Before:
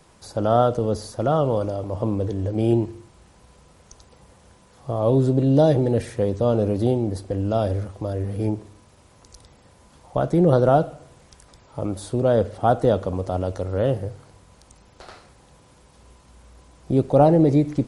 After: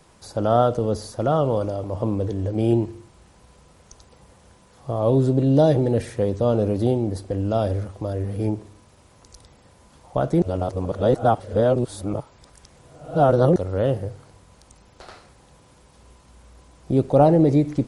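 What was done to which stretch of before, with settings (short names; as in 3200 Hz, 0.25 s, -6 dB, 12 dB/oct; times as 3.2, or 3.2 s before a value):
10.42–13.56 reverse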